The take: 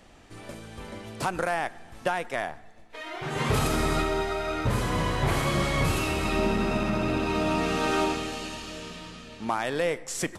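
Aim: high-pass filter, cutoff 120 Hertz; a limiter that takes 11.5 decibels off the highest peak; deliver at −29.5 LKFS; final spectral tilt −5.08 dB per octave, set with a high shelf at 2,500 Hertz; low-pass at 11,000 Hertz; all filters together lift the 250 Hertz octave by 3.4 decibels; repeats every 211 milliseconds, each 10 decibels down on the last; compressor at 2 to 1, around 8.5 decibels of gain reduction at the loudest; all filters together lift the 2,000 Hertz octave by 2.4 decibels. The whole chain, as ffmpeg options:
ffmpeg -i in.wav -af "highpass=120,lowpass=11000,equalizer=frequency=250:width_type=o:gain=5,equalizer=frequency=2000:width_type=o:gain=6,highshelf=frequency=2500:gain=-6.5,acompressor=threshold=-36dB:ratio=2,alimiter=level_in=4.5dB:limit=-24dB:level=0:latency=1,volume=-4.5dB,aecho=1:1:211|422|633|844:0.316|0.101|0.0324|0.0104,volume=8dB" out.wav

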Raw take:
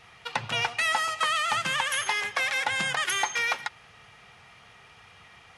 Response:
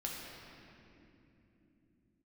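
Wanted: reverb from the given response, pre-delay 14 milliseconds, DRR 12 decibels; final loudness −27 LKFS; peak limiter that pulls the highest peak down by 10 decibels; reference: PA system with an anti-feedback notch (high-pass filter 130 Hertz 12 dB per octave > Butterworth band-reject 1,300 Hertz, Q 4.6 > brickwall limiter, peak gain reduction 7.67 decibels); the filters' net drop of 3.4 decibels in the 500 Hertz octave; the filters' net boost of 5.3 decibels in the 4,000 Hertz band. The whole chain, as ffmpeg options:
-filter_complex "[0:a]equalizer=frequency=500:width_type=o:gain=-4.5,equalizer=frequency=4000:width_type=o:gain=7.5,alimiter=limit=-20.5dB:level=0:latency=1,asplit=2[link_01][link_02];[1:a]atrim=start_sample=2205,adelay=14[link_03];[link_02][link_03]afir=irnorm=-1:irlink=0,volume=-13dB[link_04];[link_01][link_04]amix=inputs=2:normalize=0,highpass=130,asuperstop=centerf=1300:order=8:qfactor=4.6,volume=5.5dB,alimiter=limit=-19.5dB:level=0:latency=1"

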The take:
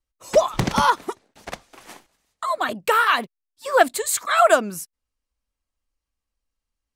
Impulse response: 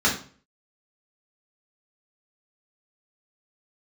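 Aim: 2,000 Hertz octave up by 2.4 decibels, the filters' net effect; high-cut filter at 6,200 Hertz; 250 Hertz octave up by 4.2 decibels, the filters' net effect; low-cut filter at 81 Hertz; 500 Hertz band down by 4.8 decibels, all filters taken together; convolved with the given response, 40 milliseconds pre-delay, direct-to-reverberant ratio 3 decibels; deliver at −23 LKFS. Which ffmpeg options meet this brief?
-filter_complex "[0:a]highpass=81,lowpass=6200,equalizer=frequency=250:width_type=o:gain=7.5,equalizer=frequency=500:width_type=o:gain=-8.5,equalizer=frequency=2000:width_type=o:gain=4,asplit=2[link_01][link_02];[1:a]atrim=start_sample=2205,adelay=40[link_03];[link_02][link_03]afir=irnorm=-1:irlink=0,volume=-19dB[link_04];[link_01][link_04]amix=inputs=2:normalize=0,volume=-4.5dB"

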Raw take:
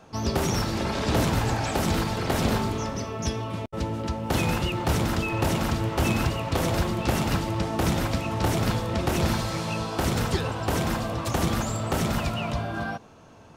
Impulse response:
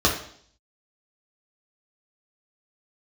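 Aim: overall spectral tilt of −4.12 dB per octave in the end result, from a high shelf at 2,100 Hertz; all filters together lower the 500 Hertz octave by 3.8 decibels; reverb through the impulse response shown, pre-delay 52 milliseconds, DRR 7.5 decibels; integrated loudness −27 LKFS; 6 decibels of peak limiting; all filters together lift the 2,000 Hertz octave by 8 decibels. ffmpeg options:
-filter_complex "[0:a]equalizer=frequency=500:width_type=o:gain=-6,equalizer=frequency=2000:width_type=o:gain=8,highshelf=frequency=2100:gain=4.5,alimiter=limit=-16dB:level=0:latency=1,asplit=2[link_01][link_02];[1:a]atrim=start_sample=2205,adelay=52[link_03];[link_02][link_03]afir=irnorm=-1:irlink=0,volume=-24.5dB[link_04];[link_01][link_04]amix=inputs=2:normalize=0,volume=-2dB"

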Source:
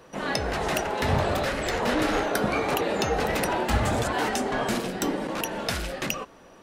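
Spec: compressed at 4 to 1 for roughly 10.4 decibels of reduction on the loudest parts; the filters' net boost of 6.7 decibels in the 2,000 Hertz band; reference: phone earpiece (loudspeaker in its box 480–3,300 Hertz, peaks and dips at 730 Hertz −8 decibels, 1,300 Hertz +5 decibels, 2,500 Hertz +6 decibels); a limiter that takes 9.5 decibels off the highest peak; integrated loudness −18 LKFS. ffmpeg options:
ffmpeg -i in.wav -af "equalizer=frequency=2000:width_type=o:gain=5.5,acompressor=threshold=-32dB:ratio=4,alimiter=level_in=0.5dB:limit=-24dB:level=0:latency=1,volume=-0.5dB,highpass=480,equalizer=frequency=730:width_type=q:width=4:gain=-8,equalizer=frequency=1300:width_type=q:width=4:gain=5,equalizer=frequency=2500:width_type=q:width=4:gain=6,lowpass=frequency=3300:width=0.5412,lowpass=frequency=3300:width=1.3066,volume=17dB" out.wav

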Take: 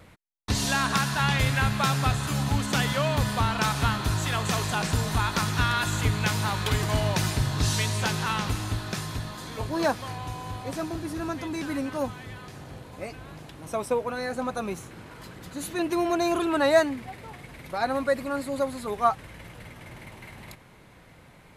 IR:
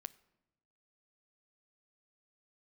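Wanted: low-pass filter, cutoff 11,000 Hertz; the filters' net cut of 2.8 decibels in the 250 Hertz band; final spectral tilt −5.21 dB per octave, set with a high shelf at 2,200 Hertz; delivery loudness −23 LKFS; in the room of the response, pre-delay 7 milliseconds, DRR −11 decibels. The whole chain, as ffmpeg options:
-filter_complex "[0:a]lowpass=11000,equalizer=frequency=250:width_type=o:gain=-4,highshelf=frequency=2200:gain=-4.5,asplit=2[link_01][link_02];[1:a]atrim=start_sample=2205,adelay=7[link_03];[link_02][link_03]afir=irnorm=-1:irlink=0,volume=16dB[link_04];[link_01][link_04]amix=inputs=2:normalize=0,volume=-6dB"

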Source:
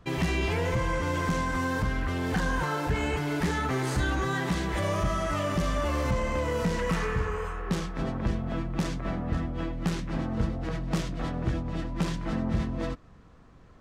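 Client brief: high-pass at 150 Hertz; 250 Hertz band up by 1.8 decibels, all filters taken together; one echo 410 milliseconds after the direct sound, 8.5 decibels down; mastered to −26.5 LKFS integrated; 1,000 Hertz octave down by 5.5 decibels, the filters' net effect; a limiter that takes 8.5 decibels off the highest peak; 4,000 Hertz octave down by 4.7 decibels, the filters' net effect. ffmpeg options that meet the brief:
ffmpeg -i in.wav -af "highpass=150,equalizer=frequency=250:width_type=o:gain=4,equalizer=frequency=1000:width_type=o:gain=-6.5,equalizer=frequency=4000:width_type=o:gain=-6,alimiter=limit=-24dB:level=0:latency=1,aecho=1:1:410:0.376,volume=6dB" out.wav

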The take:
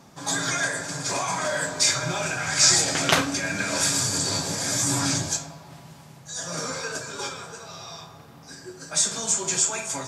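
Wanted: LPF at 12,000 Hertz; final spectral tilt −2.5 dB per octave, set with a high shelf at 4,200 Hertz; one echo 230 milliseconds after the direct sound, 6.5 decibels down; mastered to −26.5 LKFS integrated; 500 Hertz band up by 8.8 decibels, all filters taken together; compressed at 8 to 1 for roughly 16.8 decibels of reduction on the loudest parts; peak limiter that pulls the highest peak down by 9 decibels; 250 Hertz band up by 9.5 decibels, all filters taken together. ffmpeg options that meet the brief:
ffmpeg -i in.wav -af "lowpass=12000,equalizer=frequency=250:width_type=o:gain=9,equalizer=frequency=500:width_type=o:gain=9,highshelf=frequency=4200:gain=7.5,acompressor=threshold=-26dB:ratio=8,alimiter=limit=-21.5dB:level=0:latency=1,aecho=1:1:230:0.473,volume=3.5dB" out.wav

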